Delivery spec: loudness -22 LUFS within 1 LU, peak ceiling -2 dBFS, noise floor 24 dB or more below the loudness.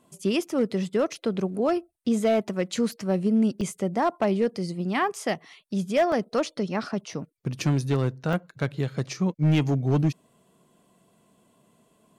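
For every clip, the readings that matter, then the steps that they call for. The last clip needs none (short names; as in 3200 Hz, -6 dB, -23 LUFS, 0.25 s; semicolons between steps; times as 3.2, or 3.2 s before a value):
clipped 0.8%; flat tops at -16.0 dBFS; dropouts 5; longest dropout 1.7 ms; loudness -26.5 LUFS; peak -16.0 dBFS; loudness target -22.0 LUFS
-> clip repair -16 dBFS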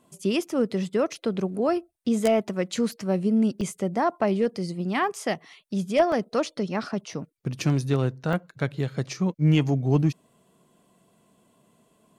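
clipped 0.0%; dropouts 5; longest dropout 1.7 ms
-> interpolate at 3.61/5.16/6.12/7.6/8.33, 1.7 ms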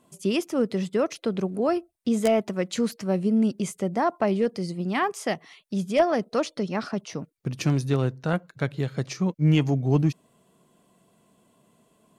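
dropouts 0; loudness -26.0 LUFS; peak -7.0 dBFS; loudness target -22.0 LUFS
-> gain +4 dB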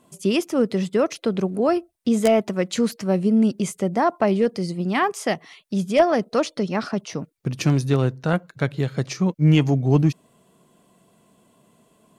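loudness -22.0 LUFS; peak -3.0 dBFS; noise floor -61 dBFS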